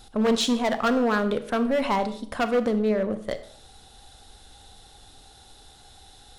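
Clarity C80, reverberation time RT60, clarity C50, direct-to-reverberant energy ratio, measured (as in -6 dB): 16.0 dB, 0.55 s, 12.5 dB, 10.5 dB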